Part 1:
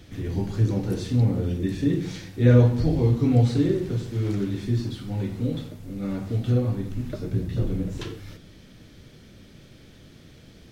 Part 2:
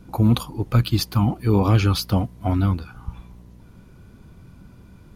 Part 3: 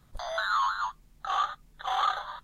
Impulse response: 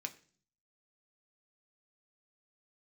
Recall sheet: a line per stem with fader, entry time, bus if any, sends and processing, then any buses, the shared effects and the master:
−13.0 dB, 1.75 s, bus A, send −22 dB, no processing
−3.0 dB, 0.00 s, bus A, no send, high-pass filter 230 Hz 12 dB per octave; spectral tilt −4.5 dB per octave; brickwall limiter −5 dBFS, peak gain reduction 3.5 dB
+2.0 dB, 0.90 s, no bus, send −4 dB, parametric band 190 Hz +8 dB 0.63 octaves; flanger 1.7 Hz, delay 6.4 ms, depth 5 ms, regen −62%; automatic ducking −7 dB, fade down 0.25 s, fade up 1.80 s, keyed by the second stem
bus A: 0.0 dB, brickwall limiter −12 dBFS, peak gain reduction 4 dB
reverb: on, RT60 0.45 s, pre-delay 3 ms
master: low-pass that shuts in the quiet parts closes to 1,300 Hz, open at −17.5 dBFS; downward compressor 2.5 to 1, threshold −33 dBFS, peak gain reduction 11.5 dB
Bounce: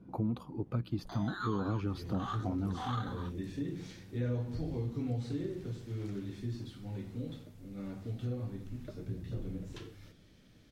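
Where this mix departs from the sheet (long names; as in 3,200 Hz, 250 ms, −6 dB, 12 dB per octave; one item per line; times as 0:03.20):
stem 2 −3.0 dB → −12.5 dB
stem 3: send off
master: missing low-pass that shuts in the quiet parts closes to 1,300 Hz, open at −17.5 dBFS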